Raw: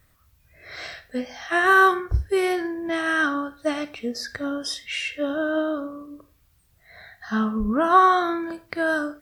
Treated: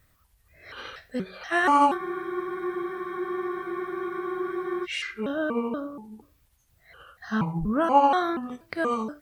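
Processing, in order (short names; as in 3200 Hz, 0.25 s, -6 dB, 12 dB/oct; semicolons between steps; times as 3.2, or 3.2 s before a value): trilling pitch shifter -5 st, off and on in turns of 0.239 s; spectral freeze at 1.99, 2.84 s; gain -2.5 dB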